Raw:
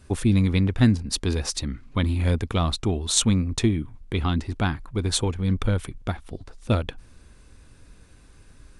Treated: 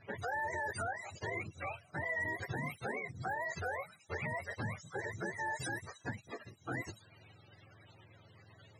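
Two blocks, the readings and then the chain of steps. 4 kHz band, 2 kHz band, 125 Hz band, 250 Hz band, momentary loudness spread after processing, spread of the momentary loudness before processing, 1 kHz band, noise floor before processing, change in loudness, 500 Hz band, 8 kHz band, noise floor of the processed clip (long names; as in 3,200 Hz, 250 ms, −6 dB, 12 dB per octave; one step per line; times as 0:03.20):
−25.0 dB, −1.0 dB, −22.0 dB, −23.5 dB, 11 LU, 11 LU, −5.0 dB, −51 dBFS, −15.5 dB, −11.5 dB, −23.0 dB, −63 dBFS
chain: frequency axis turned over on the octave scale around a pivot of 410 Hz
low-pass that shuts in the quiet parts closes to 2,000 Hz, open at −21.5 dBFS
downward compressor 1.5 to 1, threshold −45 dBFS, peak gain reduction 11 dB
brickwall limiter −28.5 dBFS, peak gain reduction 10.5 dB
level −1 dB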